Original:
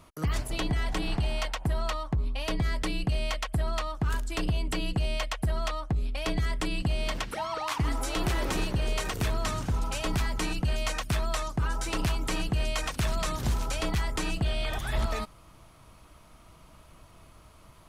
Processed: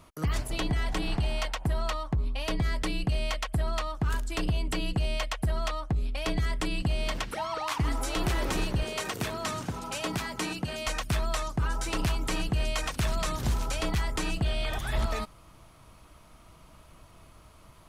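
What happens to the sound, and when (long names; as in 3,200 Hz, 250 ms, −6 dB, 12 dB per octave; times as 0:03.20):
0:08.83–0:10.87: high-pass filter 140 Hz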